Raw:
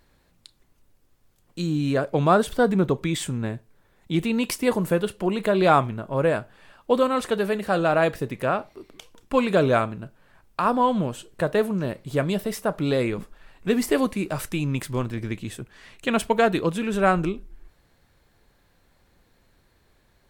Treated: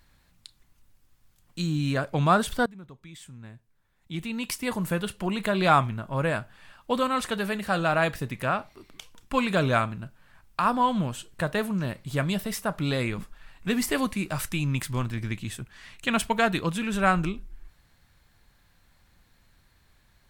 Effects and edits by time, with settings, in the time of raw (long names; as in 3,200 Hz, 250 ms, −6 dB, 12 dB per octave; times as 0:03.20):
0:02.66–0:05.11: fade in quadratic, from −21.5 dB
whole clip: parametric band 430 Hz −10.5 dB 1.5 octaves; level +1.5 dB